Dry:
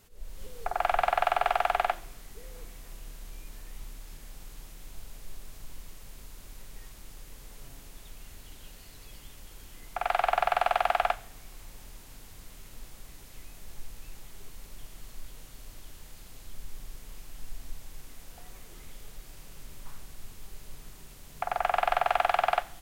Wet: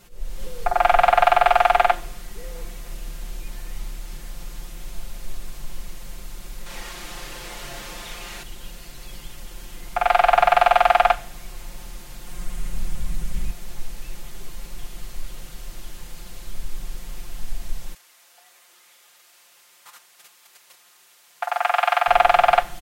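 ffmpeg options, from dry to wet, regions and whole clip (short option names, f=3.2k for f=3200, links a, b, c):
-filter_complex "[0:a]asettb=1/sr,asplit=3[a][b][c];[a]atrim=end=6.664[d];[b]atrim=start=6.66:end=8.43,asetpts=PTS-STARTPTS,afade=t=in:d=0.004:c=qsin,afade=t=out:st=1.766:d=0.004:c=qsin,asplit=2[e][f];[f]highpass=f=720:p=1,volume=17dB,asoftclip=type=tanh:threshold=-32dB[g];[e][g]amix=inputs=2:normalize=0,lowpass=f=3.6k:p=1,volume=-6dB,asplit=2[h][i];[i]adelay=38,volume=-3dB[j];[h][j]amix=inputs=2:normalize=0,atrim=end_sample=78057[k];[c]atrim=start=8.426[l];[d][k]acrossfade=d=0.004:c1=hsin:c2=qsin[m];[m][l]acrossfade=d=0.004:c1=qsin:c2=hsin,asettb=1/sr,asplit=3[n][o][p];[n]atrim=end=12.264[q];[o]atrim=start=12.26:end=13.51,asetpts=PTS-STARTPTS,afade=t=in:d=0.004:c=qsin,afade=t=out:st=1.246:d=0.004:c=qsin,aecho=1:1:5.6:0.77,atrim=end_sample=55125,asubboost=boost=10:cutoff=210,aeval=exprs='0.0531*(abs(mod(val(0)/0.0531+3,4)-2)-1)':c=same[r];[p]atrim=start=13.506[s];[q][r]acrossfade=d=0.004:c1=hsin:c2=qsin[t];[t][s]acrossfade=d=0.004:c1=qsin:c2=hsin,asettb=1/sr,asplit=3[u][v][w];[u]atrim=end=17.944[x];[v]atrim=start=17.94:end=22.08,asetpts=PTS-STARTPTS,afade=t=in:d=0.004:c=qsin,afade=t=out:st=4.136:d=0.004:c=qsin,agate=range=-8dB:threshold=-37dB:ratio=16:release=100:detection=peak,highpass=880[y];[w]atrim=start=22.076[z];[x][y]acrossfade=d=0.004:c1=hsin:c2=qsin[aa];[aa][z]acrossfade=d=0.004:c1=qsin:c2=hsin,highshelf=f=10k:g=-4.5,aecho=1:1:5.7:0.8,volume=7.5dB"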